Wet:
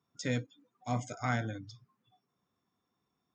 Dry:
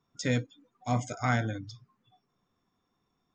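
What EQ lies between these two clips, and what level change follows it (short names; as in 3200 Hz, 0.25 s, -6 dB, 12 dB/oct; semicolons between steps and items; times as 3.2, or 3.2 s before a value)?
HPF 73 Hz; -4.5 dB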